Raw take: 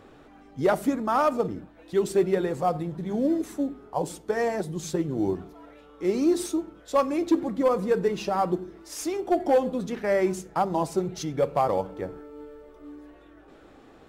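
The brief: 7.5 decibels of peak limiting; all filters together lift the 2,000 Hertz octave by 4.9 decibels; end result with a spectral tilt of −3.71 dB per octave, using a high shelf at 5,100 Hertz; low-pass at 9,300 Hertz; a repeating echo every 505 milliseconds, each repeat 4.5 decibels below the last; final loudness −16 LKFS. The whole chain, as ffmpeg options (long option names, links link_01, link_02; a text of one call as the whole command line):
ffmpeg -i in.wav -af "lowpass=9300,equalizer=frequency=2000:width_type=o:gain=7,highshelf=frequency=5100:gain=-8,alimiter=limit=-18.5dB:level=0:latency=1,aecho=1:1:505|1010|1515|2020|2525|3030|3535|4040|4545:0.596|0.357|0.214|0.129|0.0772|0.0463|0.0278|0.0167|0.01,volume=11.5dB" out.wav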